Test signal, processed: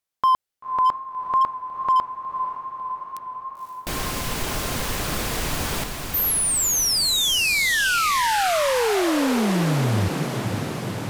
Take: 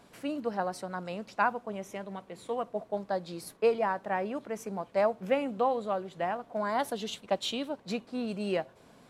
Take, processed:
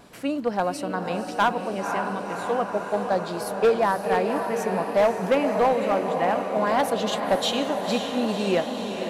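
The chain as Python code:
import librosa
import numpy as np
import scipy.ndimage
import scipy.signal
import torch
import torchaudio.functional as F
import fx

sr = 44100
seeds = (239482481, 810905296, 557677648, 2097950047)

y = fx.echo_diffused(x, sr, ms=525, feedback_pct=73, wet_db=-7)
y = fx.wow_flutter(y, sr, seeds[0], rate_hz=2.1, depth_cents=29.0)
y = np.clip(y, -10.0 ** (-21.5 / 20.0), 10.0 ** (-21.5 / 20.0))
y = y * 10.0 ** (7.5 / 20.0)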